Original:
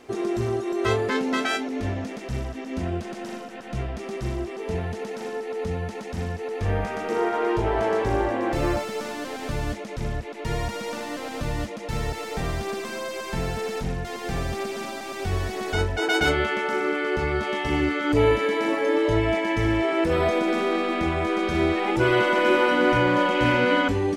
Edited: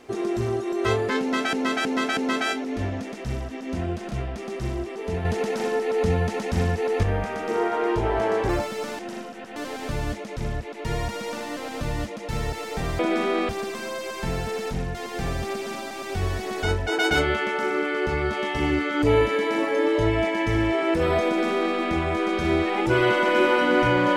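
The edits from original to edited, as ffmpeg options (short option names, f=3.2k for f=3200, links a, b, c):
-filter_complex "[0:a]asplit=12[a][b][c][d][e][f][g][h][i][j][k][l];[a]atrim=end=1.532[m];[b]atrim=start=1.208:end=1.532[n];[c]atrim=start=1.208:end=1.532[o];[d]atrim=start=1.208:end=3.152[p];[e]atrim=start=3.718:end=4.862[q];[f]atrim=start=4.858:end=6.642,asetpts=PTS-STARTPTS,volume=6.5dB[r];[g]atrim=start=6.638:end=8.102[s];[h]atrim=start=8.658:end=9.162[t];[i]atrim=start=3.148:end=3.722[u];[j]atrim=start=9.158:end=12.592[v];[k]atrim=start=20.358:end=20.862[w];[l]atrim=start=12.588[x];[m][n]acrossfade=d=0.004:c1=hsin:c2=hsin[y];[y][o]acrossfade=d=0.004:c1=hsin:c2=hsin[z];[z][p]acrossfade=d=0.004:c1=hsin:c2=hsin[aa];[aa][q]acrossfade=d=0.004:c1=hsin:c2=hsin[ab];[ab][r]acrossfade=d=0.004:c1=hsin:c2=hsin[ac];[ac][s]acrossfade=d=0.004:c1=hsin:c2=hsin[ad];[ad][t]acrossfade=d=0.004:c1=hsin:c2=hsin[ae];[ae][u]acrossfade=d=0.004:c1=hsin:c2=hsin[af];[af][v]acrossfade=d=0.004:c1=hsin:c2=hsin[ag];[ag][w]acrossfade=d=0.004:c1=hsin:c2=hsin[ah];[ah][x]acrossfade=d=0.004:c1=hsin:c2=hsin"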